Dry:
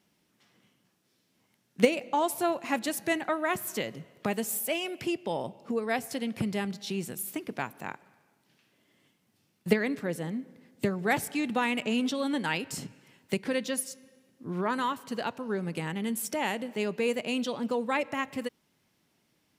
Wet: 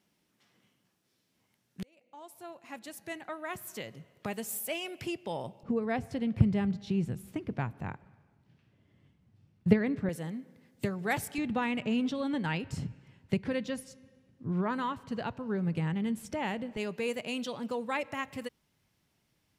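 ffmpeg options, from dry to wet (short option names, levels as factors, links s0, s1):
-filter_complex "[0:a]asettb=1/sr,asplit=3[s0][s1][s2];[s0]atrim=end=5.634[s3];[s1]atrim=start=5.63:end=10.09,asetpts=PTS-STARTPTS,afade=t=in:d=0.004:c=qsin,afade=t=out:st=4.456:d=0.004:c=qsin,aemphasis=mode=reproduction:type=riaa[s4];[s2]atrim=start=10.086[s5];[s3][s4]acrossfade=d=0.004:c1=hsin:c2=qsin[s6];[s6][s5]acrossfade=d=0.004:c1=qsin:c2=hsin,asettb=1/sr,asplit=3[s7][s8][s9];[s7]atrim=end=11.384[s10];[s8]atrim=start=11.38:end=16.77,asetpts=PTS-STARTPTS,afade=t=in:d=0.004:c=qsin,afade=t=out:st=5.386:d=0.004:c=qsin,aemphasis=mode=reproduction:type=bsi[s11];[s9]atrim=start=16.766[s12];[s10][s11]acrossfade=d=0.004:c1=hsin:c2=qsin[s13];[s13][s12]acrossfade=d=0.004:c1=qsin:c2=hsin,asplit=2[s14][s15];[s14]atrim=end=1.83,asetpts=PTS-STARTPTS,afade=t=out:st=1.826:d=0.004:c=hsin[s16];[s15]atrim=start=1.83,asetpts=PTS-STARTPTS,afade=t=in:d=3.11[s17];[s16][s17]concat=n=2:v=0:a=1,asubboost=boost=3.5:cutoff=120,volume=0.668"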